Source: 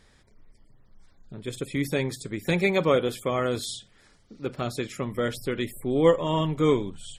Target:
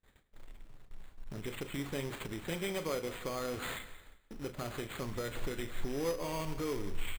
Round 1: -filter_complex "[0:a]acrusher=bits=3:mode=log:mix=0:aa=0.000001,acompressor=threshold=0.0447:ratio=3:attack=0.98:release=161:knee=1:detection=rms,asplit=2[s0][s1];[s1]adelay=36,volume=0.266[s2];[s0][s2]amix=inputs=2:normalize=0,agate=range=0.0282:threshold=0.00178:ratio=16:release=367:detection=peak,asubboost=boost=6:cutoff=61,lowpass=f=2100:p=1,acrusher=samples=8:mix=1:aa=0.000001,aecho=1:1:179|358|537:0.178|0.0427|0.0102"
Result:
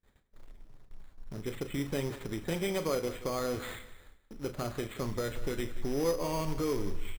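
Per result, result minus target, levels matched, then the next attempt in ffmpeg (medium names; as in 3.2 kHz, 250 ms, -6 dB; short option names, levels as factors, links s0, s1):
compression: peak gain reduction -5 dB; 2 kHz band -4.0 dB
-filter_complex "[0:a]acrusher=bits=3:mode=log:mix=0:aa=0.000001,acompressor=threshold=0.0188:ratio=3:attack=0.98:release=161:knee=1:detection=rms,asplit=2[s0][s1];[s1]adelay=36,volume=0.266[s2];[s0][s2]amix=inputs=2:normalize=0,agate=range=0.0282:threshold=0.00178:ratio=16:release=367:detection=peak,asubboost=boost=6:cutoff=61,lowpass=f=2100:p=1,acrusher=samples=8:mix=1:aa=0.000001,aecho=1:1:179|358|537:0.178|0.0427|0.0102"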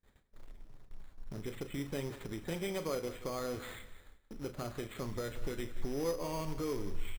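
2 kHz band -4.0 dB
-filter_complex "[0:a]acrusher=bits=3:mode=log:mix=0:aa=0.000001,acompressor=threshold=0.0188:ratio=3:attack=0.98:release=161:knee=1:detection=rms,asplit=2[s0][s1];[s1]adelay=36,volume=0.266[s2];[s0][s2]amix=inputs=2:normalize=0,agate=range=0.0282:threshold=0.00178:ratio=16:release=367:detection=peak,asubboost=boost=6:cutoff=61,acrusher=samples=8:mix=1:aa=0.000001,aecho=1:1:179|358|537:0.178|0.0427|0.0102"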